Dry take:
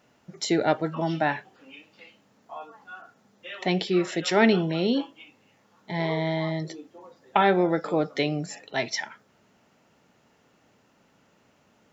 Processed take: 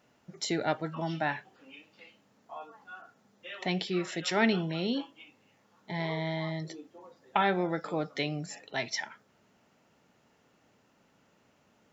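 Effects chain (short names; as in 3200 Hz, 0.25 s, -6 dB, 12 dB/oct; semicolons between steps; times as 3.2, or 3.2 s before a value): dynamic EQ 420 Hz, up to -5 dB, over -35 dBFS, Q 0.79; gain -4 dB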